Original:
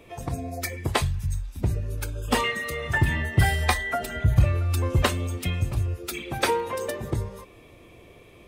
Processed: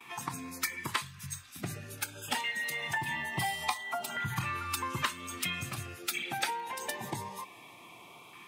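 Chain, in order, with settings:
noise gate with hold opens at −45 dBFS
high-pass filter 140 Hz 24 dB per octave
low shelf with overshoot 680 Hz −9 dB, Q 3
downward compressor 3 to 1, threshold −35 dBFS, peak gain reduction 14.5 dB
auto-filter notch saw up 0.24 Hz 600–1,800 Hz
0:02.17–0:04.32: log-companded quantiser 8 bits
level +4.5 dB

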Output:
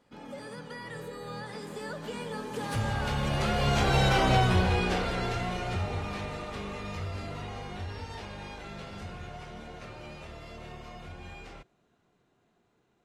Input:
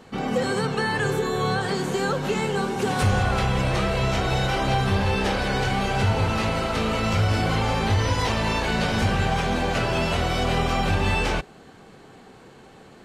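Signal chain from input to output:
source passing by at 0:04.15, 32 m/s, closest 16 metres

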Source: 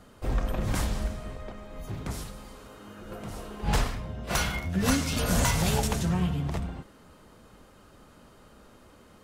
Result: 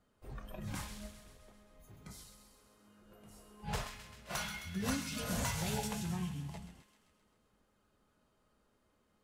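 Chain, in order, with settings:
tuned comb filter 210 Hz, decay 1 s, mix 70%
noise reduction from a noise print of the clip's start 10 dB
delay with a high-pass on its return 131 ms, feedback 63%, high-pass 1,500 Hz, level −9 dB
level −1 dB

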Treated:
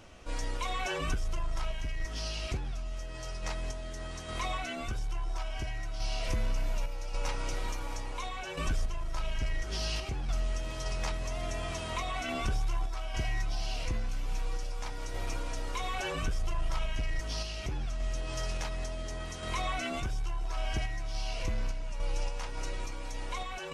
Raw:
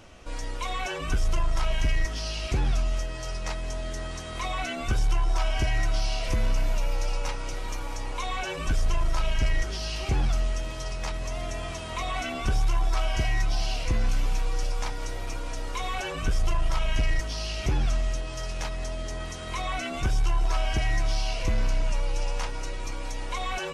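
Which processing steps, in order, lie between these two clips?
downward compressor 3 to 1, threshold −28 dBFS, peak gain reduction 7 dB
sample-and-hold tremolo

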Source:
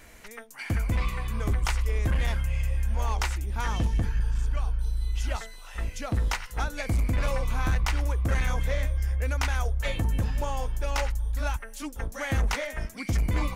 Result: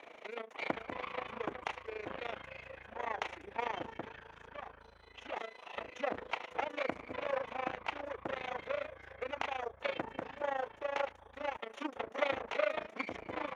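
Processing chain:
lower of the sound and its delayed copy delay 0.31 ms
downward compressor 3 to 1, threshold −32 dBFS, peak gain reduction 8.5 dB
amplitude modulation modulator 27 Hz, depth 75%
flat-topped band-pass 960 Hz, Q 0.57
level +10 dB

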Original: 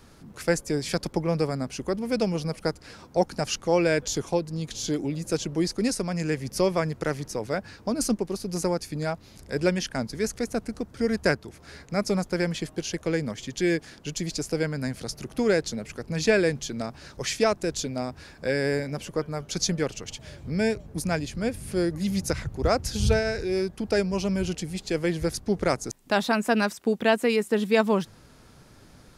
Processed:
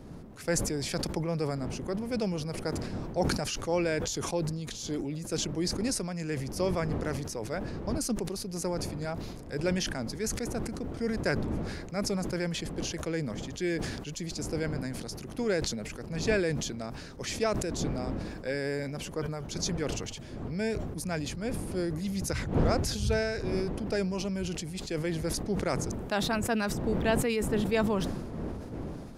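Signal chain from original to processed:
wind on the microphone 290 Hz −34 dBFS
level that may fall only so fast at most 36 dB per second
level −7 dB

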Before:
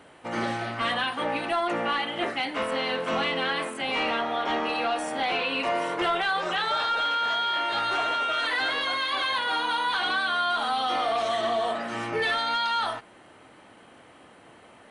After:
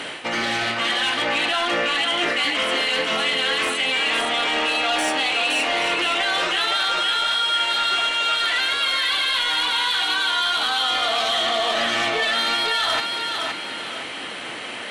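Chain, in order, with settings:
meter weighting curve D
in parallel at +0.5 dB: speech leveller within 4 dB
on the sum: brickwall limiter −9.5 dBFS, peak gain reduction 7 dB
reversed playback
downward compressor 8 to 1, threshold −28 dBFS, peak gain reduction 13.5 dB
reversed playback
sine wavefolder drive 5 dB, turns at −18 dBFS
feedback echo with a high-pass in the loop 516 ms, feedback 37%, high-pass 150 Hz, level −4 dB

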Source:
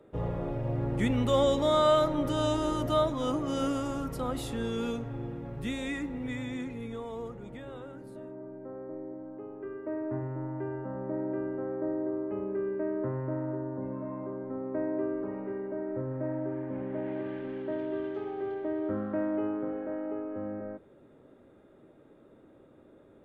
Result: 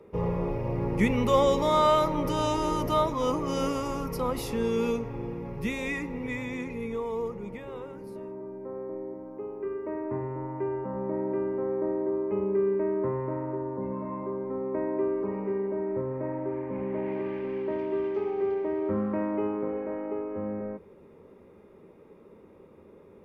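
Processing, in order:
EQ curve with evenly spaced ripples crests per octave 0.83, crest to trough 10 dB
level +3.5 dB

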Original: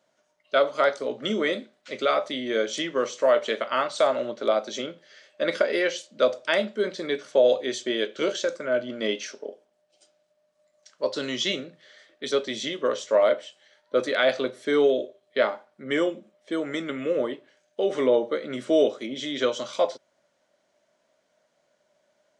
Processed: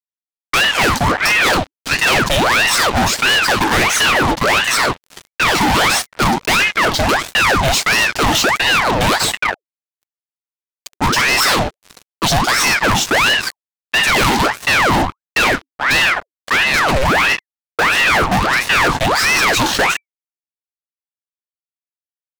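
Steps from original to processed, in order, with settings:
fuzz pedal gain 39 dB, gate −46 dBFS
ring modulator whose carrier an LFO sweeps 1,300 Hz, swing 80%, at 1.5 Hz
level +4 dB

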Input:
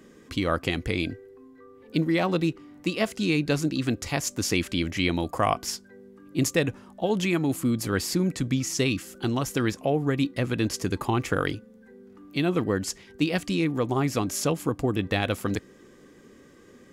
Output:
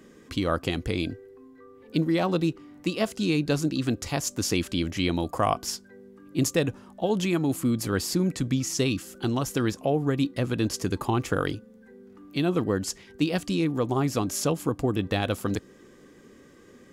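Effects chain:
dynamic equaliser 2,100 Hz, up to −6 dB, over −45 dBFS, Q 2.1

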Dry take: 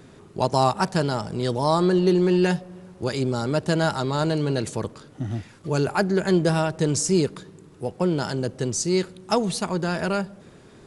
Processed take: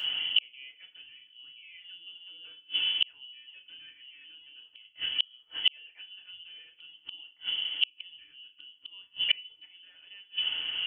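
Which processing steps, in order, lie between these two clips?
parametric band 210 Hz +10 dB 2.5 octaves
voice inversion scrambler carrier 3,200 Hz
feedback delay network reverb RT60 0.33 s, low-frequency decay 1.2×, high-frequency decay 0.9×, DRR −1 dB
gate with flip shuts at −15 dBFS, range −42 dB
level +5 dB

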